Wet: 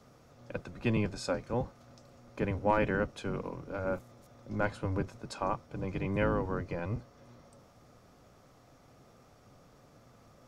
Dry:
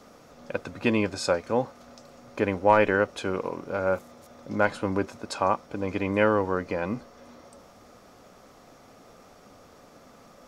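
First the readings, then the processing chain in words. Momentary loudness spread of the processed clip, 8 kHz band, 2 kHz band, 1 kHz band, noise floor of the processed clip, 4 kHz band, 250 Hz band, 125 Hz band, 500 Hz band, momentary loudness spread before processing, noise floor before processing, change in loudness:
12 LU, −9.0 dB, −9.0 dB, −9.0 dB, −60 dBFS, −9.0 dB, −6.0 dB, 0.0 dB, −9.0 dB, 14 LU, −53 dBFS, −7.5 dB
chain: sub-octave generator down 1 octave, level +4 dB
level −9 dB

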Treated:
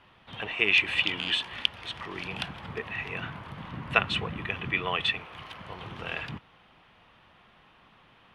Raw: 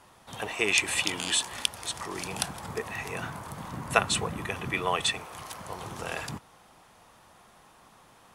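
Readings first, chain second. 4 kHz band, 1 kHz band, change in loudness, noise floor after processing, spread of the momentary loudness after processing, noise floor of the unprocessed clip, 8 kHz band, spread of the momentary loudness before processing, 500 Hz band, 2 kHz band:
+1.5 dB, −3.0 dB, +1.0 dB, −59 dBFS, 19 LU, −57 dBFS, −22.0 dB, 15 LU, −3.5 dB, +3.0 dB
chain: drawn EQ curve 160 Hz 0 dB, 820 Hz −5 dB, 3,000 Hz +5 dB, 7,300 Hz −24 dB

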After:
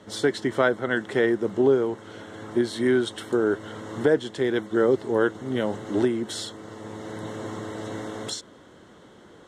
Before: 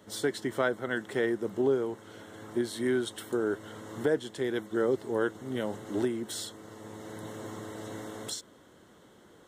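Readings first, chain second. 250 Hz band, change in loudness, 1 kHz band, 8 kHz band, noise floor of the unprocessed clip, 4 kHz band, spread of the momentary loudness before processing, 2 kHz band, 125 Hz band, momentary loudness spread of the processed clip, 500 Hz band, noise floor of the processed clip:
+7.0 dB, +7.0 dB, +7.0 dB, +2.0 dB, −58 dBFS, +6.0 dB, 13 LU, +7.0 dB, +7.0 dB, 14 LU, +7.0 dB, −51 dBFS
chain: Bessel low-pass filter 6,100 Hz, order 2
level +7 dB

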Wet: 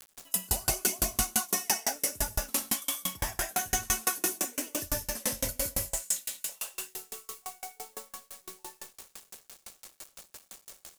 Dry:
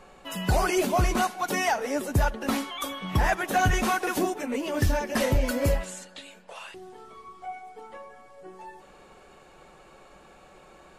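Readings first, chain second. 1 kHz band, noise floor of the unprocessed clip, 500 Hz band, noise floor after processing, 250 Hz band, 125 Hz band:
−10.5 dB, −53 dBFS, −12.0 dB, −67 dBFS, −12.0 dB, −13.5 dB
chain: on a send: delay with a high-pass on its return 379 ms, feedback 67%, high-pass 1,500 Hz, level −12 dB
on the sum: reverb whose tail is shaped and stops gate 210 ms rising, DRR −1.5 dB
in parallel at +2 dB: downward compressor, threshold −28 dBFS, peak gain reduction 12.5 dB
on the sum: high-shelf EQ 6,200 Hz +12 dB
bit-depth reduction 6 bits, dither none
bass and treble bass −1 dB, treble +12 dB
tremolo with a ramp in dB decaying 5.9 Hz, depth 34 dB
level −9 dB

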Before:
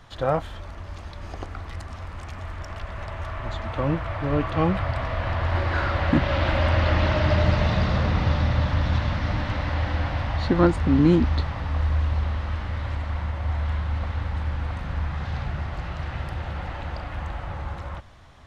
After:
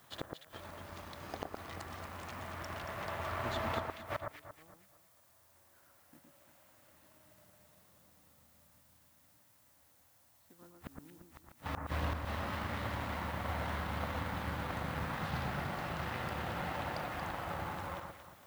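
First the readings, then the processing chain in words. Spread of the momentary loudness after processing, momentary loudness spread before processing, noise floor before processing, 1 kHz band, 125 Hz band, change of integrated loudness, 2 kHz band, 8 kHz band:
14 LU, 16 LU, −38 dBFS, −10.5 dB, −20.0 dB, −15.0 dB, −11.5 dB, can't be measured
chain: high-pass filter 160 Hz 12 dB per octave
gate with flip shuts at −23 dBFS, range −32 dB
background noise blue −57 dBFS
power curve on the samples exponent 1.4
delay that swaps between a low-pass and a high-pass 115 ms, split 1,700 Hz, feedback 58%, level −3 dB
level +1 dB

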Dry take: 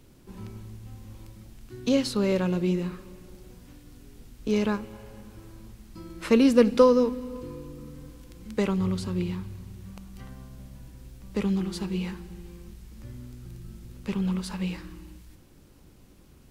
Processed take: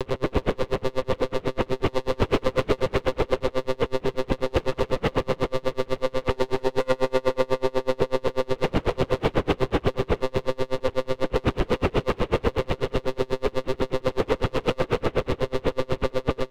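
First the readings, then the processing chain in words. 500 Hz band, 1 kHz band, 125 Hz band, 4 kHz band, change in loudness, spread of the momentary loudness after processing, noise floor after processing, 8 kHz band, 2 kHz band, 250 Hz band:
+5.5 dB, +9.0 dB, +4.0 dB, +6.0 dB, 0.0 dB, 3 LU, −50 dBFS, can't be measured, +8.5 dB, −2.5 dB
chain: compressor on every frequency bin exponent 0.2
in parallel at −0.5 dB: brickwall limiter −10.5 dBFS, peak gain reduction 9 dB
on the sum: one-pitch LPC vocoder at 8 kHz 130 Hz
gain into a clipping stage and back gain 15 dB
on a send: single-tap delay 265 ms −6.5 dB
on the sum: tremolo with a sine in dB 8.1 Hz, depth 33 dB

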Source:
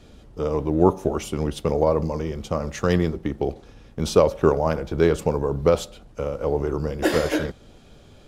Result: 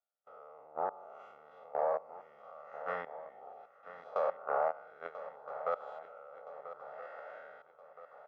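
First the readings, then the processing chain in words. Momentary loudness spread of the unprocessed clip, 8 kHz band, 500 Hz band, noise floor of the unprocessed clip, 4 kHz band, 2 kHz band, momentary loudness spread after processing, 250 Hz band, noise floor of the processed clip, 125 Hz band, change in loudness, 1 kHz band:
11 LU, below −40 dB, −17.0 dB, −49 dBFS, below −30 dB, −15.0 dB, 21 LU, −39.0 dB, −64 dBFS, below −40 dB, −16.0 dB, −9.0 dB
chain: spectrum smeared in time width 185 ms
noise gate with hold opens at −38 dBFS
comb filter 1.5 ms, depth 79%
output level in coarse steps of 21 dB
soft clipping −12 dBFS, distortion −21 dB
flat-topped band-pass 1,100 Hz, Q 1.1
feedback echo with a long and a short gap by turns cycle 1,319 ms, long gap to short 3 to 1, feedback 47%, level −13 dB

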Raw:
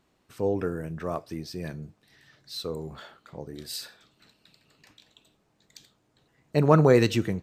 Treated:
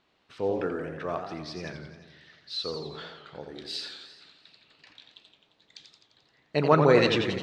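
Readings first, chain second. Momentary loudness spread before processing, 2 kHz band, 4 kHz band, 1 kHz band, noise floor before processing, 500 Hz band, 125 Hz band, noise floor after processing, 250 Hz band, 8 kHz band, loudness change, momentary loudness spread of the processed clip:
22 LU, +3.5 dB, +4.5 dB, +2.0 dB, −70 dBFS, −0.5 dB, −5.5 dB, −69 dBFS, −3.0 dB, −6.5 dB, −1.0 dB, 22 LU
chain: low-pass with resonance 3,800 Hz, resonance Q 1.5
low-shelf EQ 280 Hz −10 dB
feedback echo with a swinging delay time 87 ms, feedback 64%, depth 147 cents, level −7.5 dB
level +1 dB

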